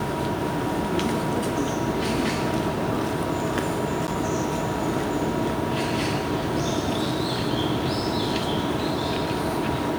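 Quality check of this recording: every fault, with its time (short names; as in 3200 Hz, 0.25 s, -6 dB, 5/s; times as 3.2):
4.07–4.08 gap 9.4 ms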